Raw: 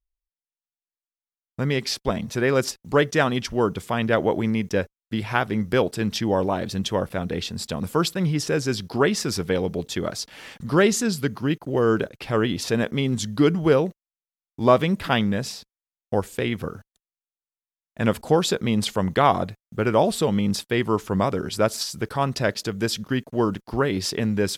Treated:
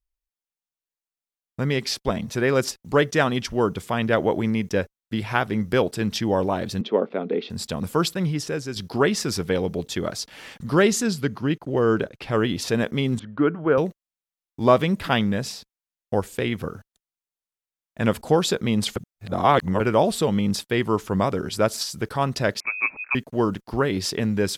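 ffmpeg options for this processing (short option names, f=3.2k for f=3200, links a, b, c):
-filter_complex "[0:a]asettb=1/sr,asplit=3[a][b][c];[a]atrim=end=6.814[d];[b]atrim=start=6.81:end=7.5,asetpts=PTS-STARTPTS,afade=t=in:d=0.004:c=qsin,afade=t=out:st=0.686:d=0.004:c=qsin,highpass=f=220:w=0.5412,highpass=f=220:w=1.3066,equalizer=f=230:t=q:w=4:g=6,equalizer=f=420:t=q:w=4:g=9,equalizer=f=1k:t=q:w=4:g=-3,equalizer=f=1.7k:t=q:w=4:g=-8,equalizer=f=2.9k:t=q:w=4:g=-6,lowpass=f=3.3k:w=0.5412,lowpass=f=3.3k:w=1.3066[e];[c]atrim=start=7.496[f];[d][e]acrossfade=d=0.004:c1=hsin:c2=qsin[g];[g][f]acrossfade=d=0.004:c1=qsin:c2=hsin,asettb=1/sr,asplit=3[h][i][j];[h]atrim=end=11.134[k];[i]atrim=start=11.13:end=12.32,asetpts=PTS-STARTPTS,afade=t=in:d=0.004:c=qsin,afade=t=out:st=1.186:d=0.004:c=qsin,highshelf=f=7.6k:g=-8.5[l];[j]atrim=start=12.316[m];[k][l]acrossfade=d=0.004:c1=hsin:c2=qsin[n];[n][m]acrossfade=d=0.004:c1=qsin:c2=hsin,asettb=1/sr,asplit=3[o][p][q];[o]atrim=end=13.194[r];[p]atrim=start=13.19:end=13.78,asetpts=PTS-STARTPTS,afade=t=in:d=0.004:c=qsin,afade=t=out:st=0.586:d=0.004:c=qsin,highpass=170,equalizer=f=190:t=q:w=4:g=-9,equalizer=f=380:t=q:w=4:g=-4,equalizer=f=790:t=q:w=4:g=-3,equalizer=f=1.4k:t=q:w=4:g=4,equalizer=f=2k:t=q:w=4:g=-6,lowpass=f=2.2k:w=0.5412,lowpass=f=2.2k:w=1.3066[s];[q]atrim=start=13.776[t];[r][s]acrossfade=d=0.004:c1=hsin:c2=qsin[u];[u][t]acrossfade=d=0.004:c1=qsin:c2=hsin,asettb=1/sr,asplit=3[v][w][x];[v]atrim=end=22.604[y];[w]atrim=start=22.6:end=23.15,asetpts=PTS-STARTPTS,afade=t=in:d=0.004:c=qsin,afade=t=out:st=0.546:d=0.004:c=qsin,lowpass=f=2.3k:t=q:w=0.5098,lowpass=f=2.3k:t=q:w=0.6013,lowpass=f=2.3k:t=q:w=0.9,lowpass=f=2.3k:t=q:w=2.563,afreqshift=-2700[z];[x]atrim=start=23.146[aa];[y][z]acrossfade=d=0.004:c1=hsin:c2=qsin[ab];[ab][aa]acrossfade=d=0.004:c1=qsin:c2=hsin,asplit=4[ac][ad][ae][af];[ac]atrim=end=8.76,asetpts=PTS-STARTPTS,afade=t=out:st=8.11:d=0.65:silence=0.375837[ag];[ad]atrim=start=8.76:end=18.962,asetpts=PTS-STARTPTS,afade=t=in:d=0.004:c=hsin:silence=0.375837[ah];[ae]atrim=start=18.958:end=19.802,asetpts=PTS-STARTPTS,areverse[ai];[af]atrim=start=19.798[aj];[ag][ah]concat=n=2:v=0:a=1[ak];[ak][ai]acrossfade=d=0.004:c1=hsin:c2=hsin[al];[al][aj]acrossfade=d=0.004:c1=hsin:c2=hsin"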